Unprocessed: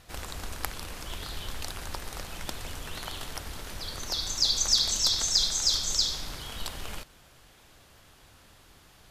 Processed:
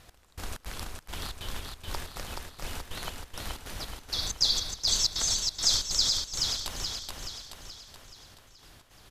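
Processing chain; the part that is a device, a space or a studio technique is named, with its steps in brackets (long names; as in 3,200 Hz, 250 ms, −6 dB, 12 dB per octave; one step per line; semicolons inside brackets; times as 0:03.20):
trance gate with a delay (gate pattern "x...xx.x" 160 BPM −24 dB; repeating echo 427 ms, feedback 51%, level −3.5 dB)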